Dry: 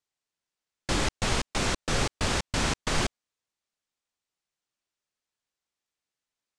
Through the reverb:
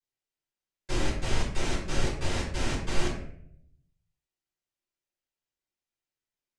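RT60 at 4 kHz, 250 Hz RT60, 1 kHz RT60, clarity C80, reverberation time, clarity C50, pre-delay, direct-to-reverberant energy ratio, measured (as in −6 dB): 0.40 s, 0.90 s, 0.55 s, 7.5 dB, 0.70 s, 4.5 dB, 3 ms, −11.5 dB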